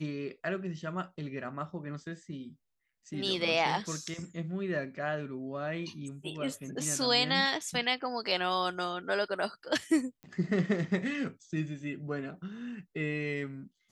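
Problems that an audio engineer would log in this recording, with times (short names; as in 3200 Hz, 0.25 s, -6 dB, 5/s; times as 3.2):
10.23 pop -34 dBFS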